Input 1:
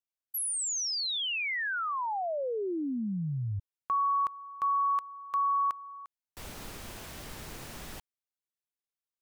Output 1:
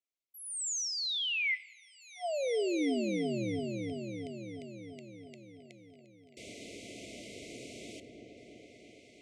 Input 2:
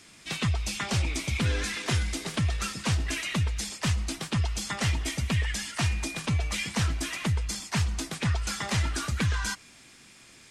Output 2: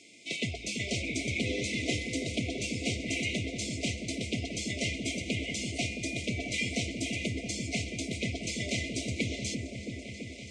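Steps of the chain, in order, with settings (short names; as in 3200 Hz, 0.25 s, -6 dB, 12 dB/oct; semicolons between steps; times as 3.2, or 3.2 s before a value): speaker cabinet 160–8200 Hz, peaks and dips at 160 Hz -9 dB, 280 Hz +4 dB, 430 Hz +4 dB, 890 Hz -3 dB, 2100 Hz +4 dB, 5000 Hz -3 dB; repeats that get brighter 0.334 s, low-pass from 400 Hz, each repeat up 1 oct, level -3 dB; two-slope reverb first 0.97 s, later 2.8 s, from -28 dB, DRR 15.5 dB; FFT band-reject 730–2000 Hz; gain -1.5 dB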